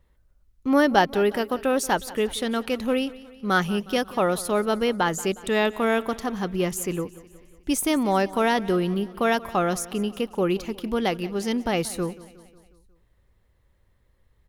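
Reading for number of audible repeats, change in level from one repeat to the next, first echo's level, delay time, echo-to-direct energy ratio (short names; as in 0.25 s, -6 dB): 4, -5.0 dB, -19.0 dB, 0.181 s, -17.5 dB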